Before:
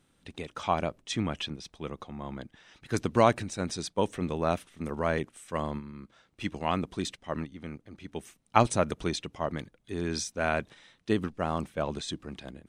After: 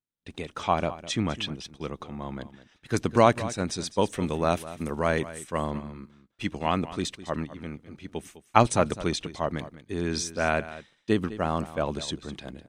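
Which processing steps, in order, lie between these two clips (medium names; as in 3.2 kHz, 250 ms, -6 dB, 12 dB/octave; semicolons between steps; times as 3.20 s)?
3.88–5.44 s: treble shelf 4.3 kHz +6.5 dB; expander -48 dBFS; delay 205 ms -15.5 dB; trim +3 dB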